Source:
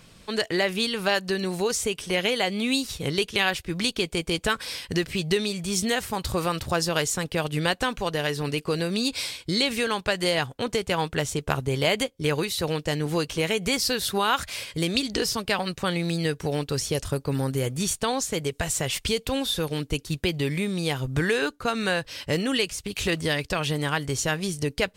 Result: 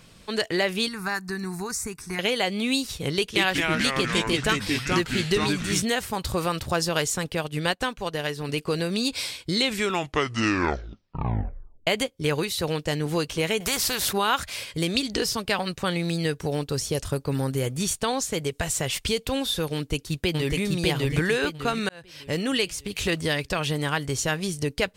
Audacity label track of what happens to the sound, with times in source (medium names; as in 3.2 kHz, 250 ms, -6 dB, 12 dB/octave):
0.880000	2.190000	static phaser centre 1.3 kHz, stages 4
3.170000	5.820000	ever faster or slower copies 185 ms, each echo -3 st, echoes 3
7.340000	8.490000	upward expansion, over -46 dBFS
9.540000	9.540000	tape stop 2.33 s
13.600000	14.130000	spectrum-flattening compressor 2:1
16.410000	16.970000	peaking EQ 2.3 kHz -3.5 dB 1.5 oct
19.740000	20.590000	echo throw 600 ms, feedback 35%, level -0.5 dB
21.890000	22.490000	fade in